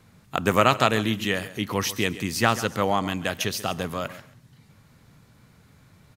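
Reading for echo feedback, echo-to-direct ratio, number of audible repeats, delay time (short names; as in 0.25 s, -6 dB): 18%, -15.5 dB, 2, 0.137 s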